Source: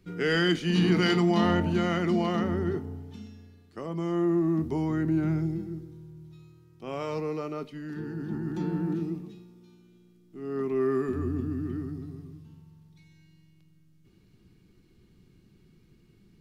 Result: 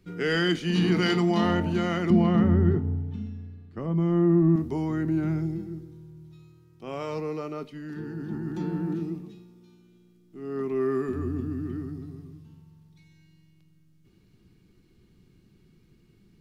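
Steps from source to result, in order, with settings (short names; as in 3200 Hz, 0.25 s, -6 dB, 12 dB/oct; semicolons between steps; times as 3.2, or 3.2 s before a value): 2.1–4.56 tone controls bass +12 dB, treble -13 dB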